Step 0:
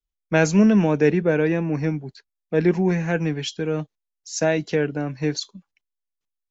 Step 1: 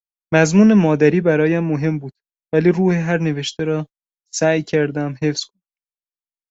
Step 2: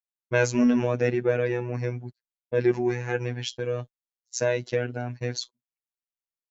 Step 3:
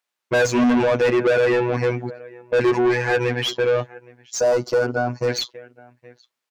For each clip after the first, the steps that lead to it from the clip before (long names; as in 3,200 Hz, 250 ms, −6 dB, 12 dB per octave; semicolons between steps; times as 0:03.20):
noise gate −33 dBFS, range −34 dB; level +4.5 dB
phases set to zero 122 Hz; level −6 dB
slap from a distant wall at 140 metres, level −28 dB; mid-hump overdrive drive 30 dB, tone 2,600 Hz, clips at −5.5 dBFS; gain on a spectral selection 0:04.39–0:05.28, 1,500–4,200 Hz −12 dB; level −3.5 dB